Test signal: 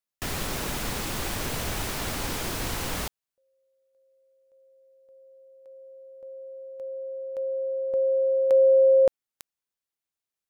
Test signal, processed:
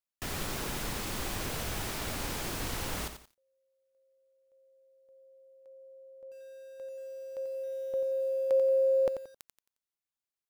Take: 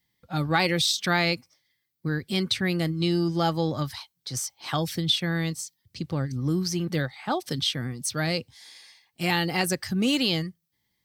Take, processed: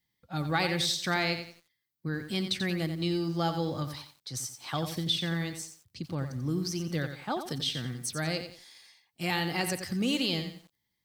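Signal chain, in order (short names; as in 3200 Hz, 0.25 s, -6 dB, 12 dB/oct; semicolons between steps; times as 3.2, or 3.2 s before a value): lo-fi delay 89 ms, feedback 35%, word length 8-bit, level -8.5 dB; gain -5.5 dB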